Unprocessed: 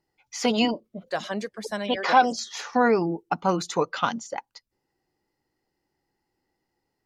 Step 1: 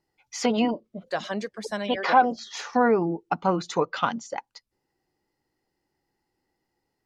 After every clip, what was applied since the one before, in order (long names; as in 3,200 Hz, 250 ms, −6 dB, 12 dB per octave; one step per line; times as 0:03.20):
treble cut that deepens with the level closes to 1,700 Hz, closed at −17.5 dBFS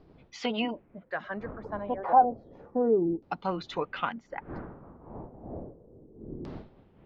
wind on the microphone 350 Hz −40 dBFS
auto-filter low-pass saw down 0.31 Hz 310–4,800 Hz
level −8 dB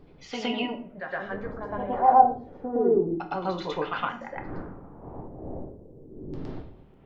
on a send: backwards echo 114 ms −4 dB
on the sum: rectangular room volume 44 cubic metres, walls mixed, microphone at 0.4 metres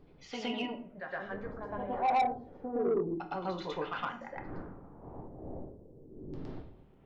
soft clipping −17 dBFS, distortion −9 dB
level −6 dB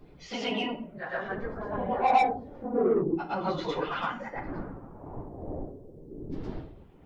random phases in long frames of 50 ms
level +6 dB